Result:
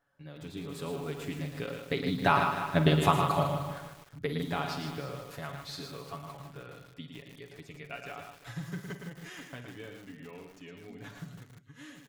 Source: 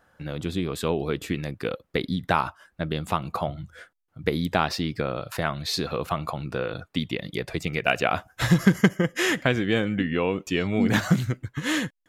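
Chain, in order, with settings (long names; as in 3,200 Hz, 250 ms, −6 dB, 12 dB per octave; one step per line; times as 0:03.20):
source passing by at 0:02.85, 7 m/s, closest 2.5 metres
comb filter 7.1 ms, depth 75%
on a send: multi-tap delay 45/50/65/112/347 ms −16.5/−14.5/−17/−6.5/−16.5 dB
on the sum: feedback echo at a low word length 154 ms, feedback 55%, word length 8 bits, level −7.5 dB
level +1 dB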